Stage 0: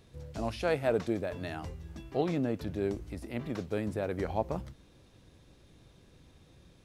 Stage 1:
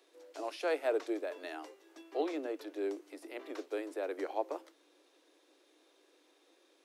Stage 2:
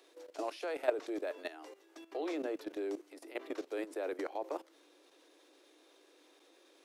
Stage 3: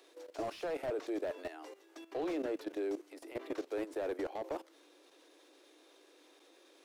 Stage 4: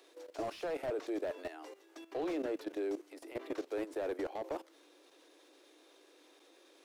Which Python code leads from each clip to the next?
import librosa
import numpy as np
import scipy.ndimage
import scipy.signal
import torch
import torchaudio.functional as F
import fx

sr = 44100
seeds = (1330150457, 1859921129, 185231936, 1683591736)

y1 = scipy.signal.sosfilt(scipy.signal.butter(16, 290.0, 'highpass', fs=sr, output='sos'), x)
y1 = y1 * 10.0 ** (-3.0 / 20.0)
y2 = fx.level_steps(y1, sr, step_db=14)
y2 = y2 * 10.0 ** (5.5 / 20.0)
y3 = fx.slew_limit(y2, sr, full_power_hz=12.0)
y3 = y3 * 10.0 ** (1.5 / 20.0)
y4 = fx.dmg_crackle(y3, sr, seeds[0], per_s=140.0, level_db=-71.0)